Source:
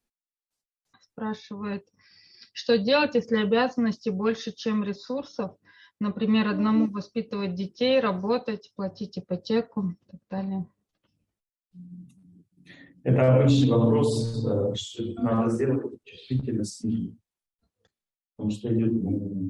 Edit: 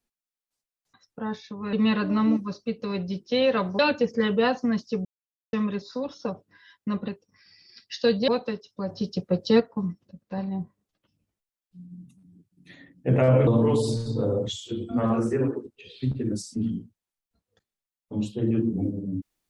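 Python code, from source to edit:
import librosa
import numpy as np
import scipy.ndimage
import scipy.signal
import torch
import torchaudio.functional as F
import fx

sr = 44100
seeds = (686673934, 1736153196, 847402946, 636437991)

y = fx.edit(x, sr, fx.swap(start_s=1.73, length_s=1.2, other_s=6.22, other_length_s=2.06),
    fx.silence(start_s=4.19, length_s=0.48),
    fx.clip_gain(start_s=8.89, length_s=0.71, db=5.5),
    fx.cut(start_s=13.47, length_s=0.28), tone=tone)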